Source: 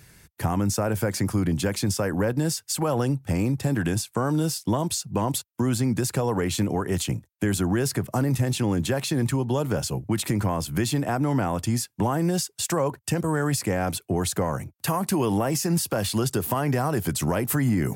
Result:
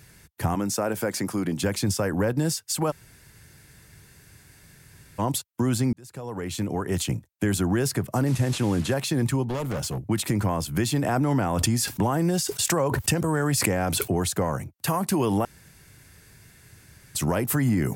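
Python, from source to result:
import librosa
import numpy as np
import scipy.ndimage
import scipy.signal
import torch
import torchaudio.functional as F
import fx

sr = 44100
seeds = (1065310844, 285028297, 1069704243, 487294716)

y = fx.highpass(x, sr, hz=200.0, slope=12, at=(0.55, 1.63))
y = fx.delta_mod(y, sr, bps=64000, step_db=-34.5, at=(8.26, 8.94))
y = fx.clip_hard(y, sr, threshold_db=-25.5, at=(9.48, 10.07))
y = fx.pre_swell(y, sr, db_per_s=21.0, at=(10.96, 14.26))
y = fx.edit(y, sr, fx.room_tone_fill(start_s=2.91, length_s=2.28, crossfade_s=0.02),
    fx.fade_in_span(start_s=5.93, length_s=1.09),
    fx.room_tone_fill(start_s=15.45, length_s=1.7), tone=tone)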